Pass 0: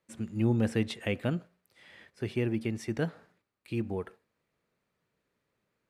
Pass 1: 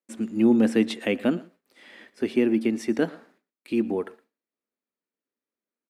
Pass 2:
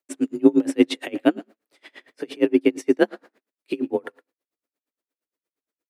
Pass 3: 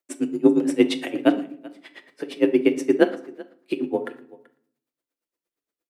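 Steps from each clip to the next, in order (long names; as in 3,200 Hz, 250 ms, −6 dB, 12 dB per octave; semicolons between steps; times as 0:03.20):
noise gate with hold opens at −57 dBFS; low shelf with overshoot 180 Hz −11.5 dB, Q 3; single-tap delay 115 ms −21.5 dB; level +5.5 dB
frequency shifter +43 Hz; tremolo with a sine in dB 8.6 Hz, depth 31 dB; level +8 dB
single-tap delay 383 ms −22 dB; rectangular room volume 720 cubic metres, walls furnished, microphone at 0.8 metres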